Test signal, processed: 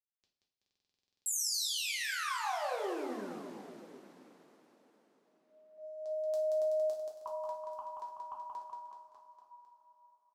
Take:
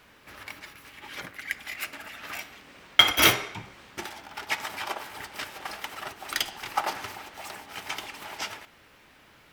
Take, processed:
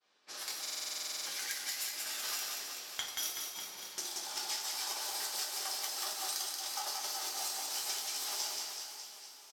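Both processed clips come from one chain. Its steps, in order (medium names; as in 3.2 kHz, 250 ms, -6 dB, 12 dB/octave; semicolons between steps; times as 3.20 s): high-pass 360 Hz 12 dB/octave; resonant high shelf 3.5 kHz +14 dB, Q 1.5; expander -41 dBFS; compression 16:1, threshold -34 dBFS; level-controlled noise filter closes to 3 kHz, open at -37 dBFS; reverse bouncing-ball echo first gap 180 ms, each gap 1.1×, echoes 5; two-slope reverb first 0.4 s, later 4.7 s, from -20 dB, DRR -1.5 dB; buffer glitch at 0.61 s, samples 2048, times 13; trim -5 dB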